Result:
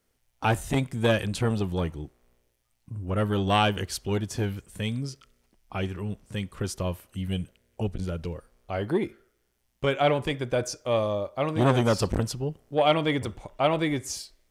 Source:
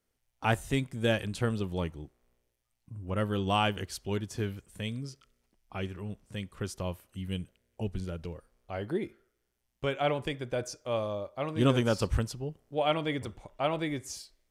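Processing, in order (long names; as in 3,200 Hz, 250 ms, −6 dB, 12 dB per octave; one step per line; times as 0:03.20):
saturating transformer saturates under 830 Hz
level +7 dB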